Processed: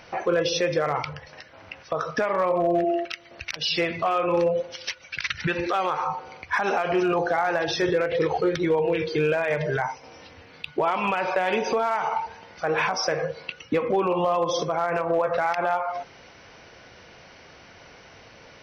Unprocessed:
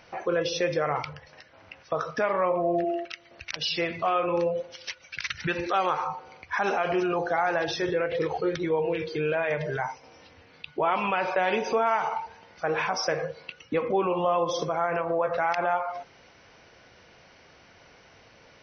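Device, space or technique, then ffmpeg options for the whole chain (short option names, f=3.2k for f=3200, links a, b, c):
limiter into clipper: -filter_complex "[0:a]alimiter=limit=-19.5dB:level=0:latency=1:release=285,asoftclip=type=hard:threshold=-21dB,asettb=1/sr,asplit=3[a][b][c];[a]atrim=end=5.044[d];[b]atrim=start=5.04:end=5.7,asetpts=PTS-STARTPTS,afade=t=in:d=0.004:c=qsin,afade=t=out:st=0.656:d=0.004:c=qsin,lowpass=5.5k[e];[c]atrim=start=5.696[f];[d][e]acrossfade=d=0.004:c1=hsin:c2=qsin[g];[g][f]acrossfade=d=0.004:c1=qsin:c2=hsin,volume=6dB"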